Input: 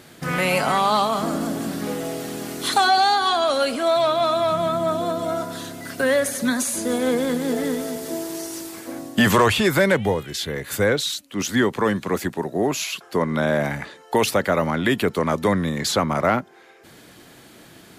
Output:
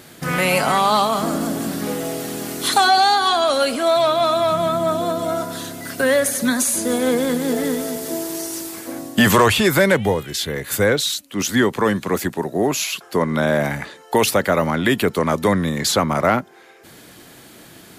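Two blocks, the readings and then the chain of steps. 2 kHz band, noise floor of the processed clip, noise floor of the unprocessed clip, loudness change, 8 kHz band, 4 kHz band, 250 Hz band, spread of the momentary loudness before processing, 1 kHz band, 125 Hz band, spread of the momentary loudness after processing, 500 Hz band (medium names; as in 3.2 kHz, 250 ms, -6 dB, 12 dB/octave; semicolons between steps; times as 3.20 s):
+2.5 dB, -44 dBFS, -48 dBFS, +3.0 dB, +5.5 dB, +3.5 dB, +2.5 dB, 11 LU, +2.5 dB, +2.5 dB, 10 LU, +2.5 dB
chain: treble shelf 8.4 kHz +6 dB; trim +2.5 dB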